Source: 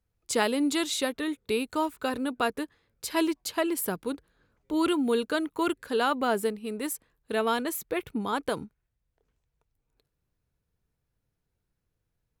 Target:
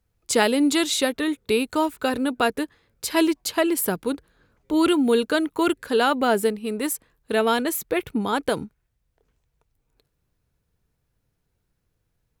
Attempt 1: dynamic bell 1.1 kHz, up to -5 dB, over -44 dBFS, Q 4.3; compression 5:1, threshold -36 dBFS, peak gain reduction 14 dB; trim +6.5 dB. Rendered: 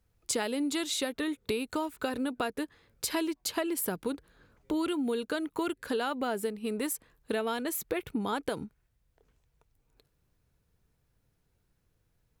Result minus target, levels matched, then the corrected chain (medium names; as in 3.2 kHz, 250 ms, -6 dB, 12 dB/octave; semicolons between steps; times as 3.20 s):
compression: peak gain reduction +14 dB
dynamic bell 1.1 kHz, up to -5 dB, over -44 dBFS, Q 4.3; trim +6.5 dB